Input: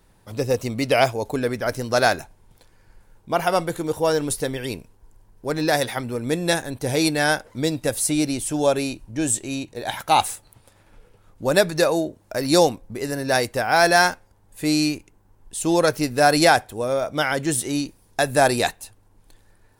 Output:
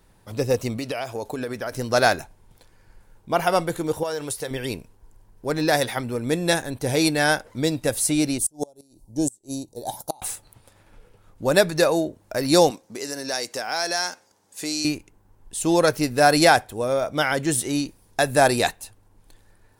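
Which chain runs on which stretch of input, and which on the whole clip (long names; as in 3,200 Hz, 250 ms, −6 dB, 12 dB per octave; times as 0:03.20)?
0:00.77–0:01.73: low-shelf EQ 170 Hz −7.5 dB + downward compressor 12 to 1, threshold −24 dBFS + notch filter 2,100 Hz, Q 15
0:04.03–0:04.51: parametric band 230 Hz −13 dB + downward compressor 4 to 1, threshold −24 dBFS + high-pass filter 130 Hz 6 dB per octave
0:08.38–0:10.22: drawn EQ curve 110 Hz 0 dB, 870 Hz +2 dB, 1,200 Hz −14 dB, 1,800 Hz −23 dB, 2,500 Hz −21 dB, 4,600 Hz +2 dB, 11,000 Hz +9 dB + gate with flip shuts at −10 dBFS, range −27 dB + expander for the loud parts, over −35 dBFS
0:12.70–0:14.85: high-pass filter 240 Hz + parametric band 5,900 Hz +12 dB 1.2 octaves + downward compressor 2 to 1, threshold −30 dBFS
whole clip: no processing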